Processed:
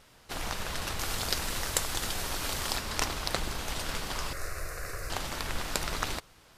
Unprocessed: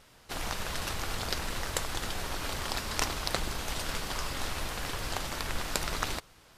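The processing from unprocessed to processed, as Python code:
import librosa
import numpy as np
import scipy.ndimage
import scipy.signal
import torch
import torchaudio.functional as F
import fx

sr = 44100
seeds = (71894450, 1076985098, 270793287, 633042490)

y = fx.high_shelf(x, sr, hz=4600.0, db=7.5, at=(0.99, 2.77))
y = fx.fixed_phaser(y, sr, hz=880.0, stages=6, at=(4.33, 5.1))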